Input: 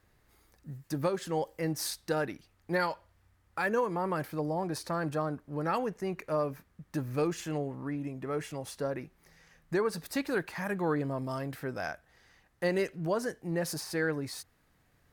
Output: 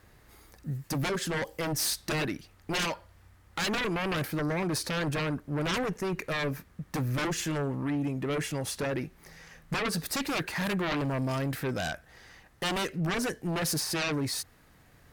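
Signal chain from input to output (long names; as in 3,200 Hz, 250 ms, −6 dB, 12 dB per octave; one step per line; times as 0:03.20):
harmonic generator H 3 −6 dB, 7 −7 dB, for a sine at −18 dBFS
dynamic equaliser 810 Hz, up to −4 dB, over −42 dBFS, Q 0.74
level −1.5 dB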